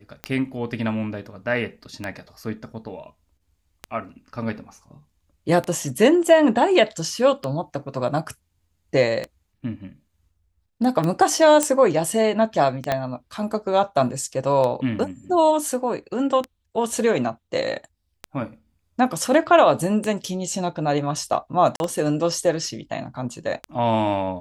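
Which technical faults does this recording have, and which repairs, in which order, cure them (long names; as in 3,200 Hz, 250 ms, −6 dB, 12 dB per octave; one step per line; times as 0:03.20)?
scratch tick 33 1/3 rpm −13 dBFS
0:11.63: click −5 dBFS
0:12.92: click −8 dBFS
0:21.76–0:21.80: drop-out 41 ms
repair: click removal
repair the gap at 0:21.76, 41 ms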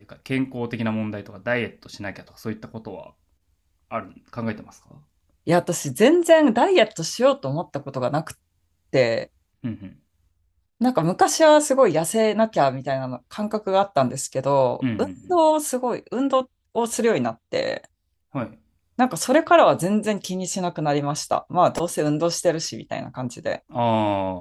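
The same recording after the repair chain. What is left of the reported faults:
0:12.92: click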